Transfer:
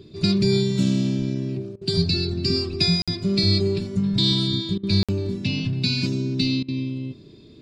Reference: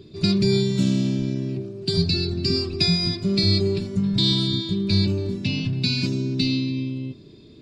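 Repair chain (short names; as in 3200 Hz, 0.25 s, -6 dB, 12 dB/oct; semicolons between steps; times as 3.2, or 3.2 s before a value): interpolate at 3.02/5.03, 56 ms; interpolate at 1.76/4.78/6.63, 52 ms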